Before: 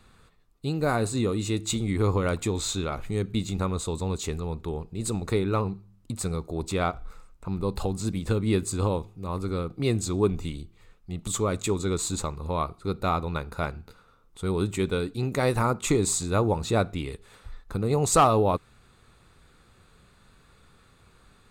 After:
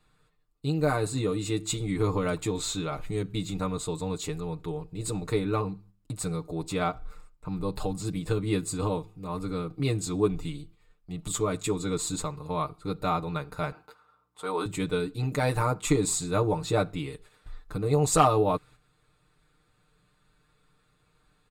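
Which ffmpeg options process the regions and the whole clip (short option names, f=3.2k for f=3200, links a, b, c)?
-filter_complex "[0:a]asettb=1/sr,asplit=3[a][b][c];[a]atrim=end=13.724[d];[b]atrim=start=13.72:end=14.66,asetpts=PTS-STARTPTS,afade=t=in:d=0.004:c=qsin,afade=t=out:st=0.936:d=0.004:c=qsin,highpass=390,equalizer=f=1k:w=0.92:g=9.5,aeval=exprs='val(0)+0.000501*(sin(2*PI*60*n/s)+sin(2*PI*2*60*n/s)/2+sin(2*PI*3*60*n/s)/3+sin(2*PI*4*60*n/s)/4+sin(2*PI*5*60*n/s)/5)':c=same[e];[c]atrim=start=14.656[f];[d][e]acrossfade=d=0.004:c1=hsin:c2=qsin[g];[g][f]acrossfade=d=0.004:c1=qsin:c2=hsin,bandreject=f=6.1k:w=14,agate=range=-8dB:threshold=-48dB:ratio=16:detection=peak,aecho=1:1:6.6:0.84,volume=-4dB"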